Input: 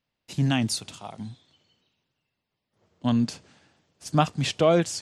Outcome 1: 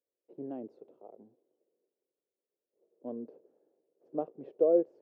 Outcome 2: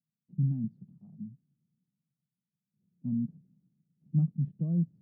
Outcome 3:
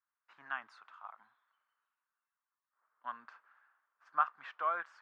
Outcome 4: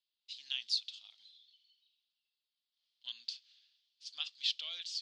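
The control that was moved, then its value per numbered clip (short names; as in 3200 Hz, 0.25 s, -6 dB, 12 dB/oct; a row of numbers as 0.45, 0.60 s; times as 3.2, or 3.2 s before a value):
Butterworth band-pass, frequency: 440, 170, 1300, 3900 Hz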